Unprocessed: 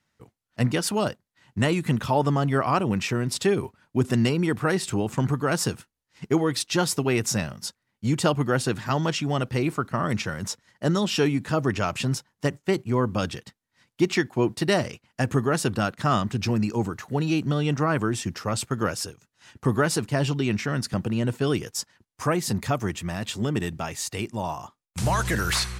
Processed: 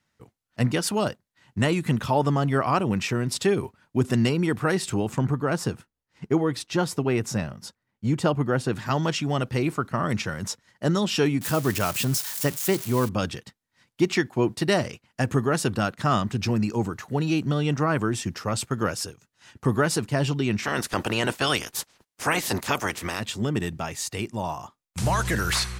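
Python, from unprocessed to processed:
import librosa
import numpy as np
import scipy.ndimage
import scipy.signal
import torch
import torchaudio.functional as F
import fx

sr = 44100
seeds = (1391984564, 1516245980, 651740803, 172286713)

y = fx.high_shelf(x, sr, hz=2300.0, db=-8.5, at=(5.18, 8.73))
y = fx.crossing_spikes(y, sr, level_db=-21.5, at=(11.41, 13.09))
y = fx.spec_clip(y, sr, under_db=22, at=(20.62, 23.19), fade=0.02)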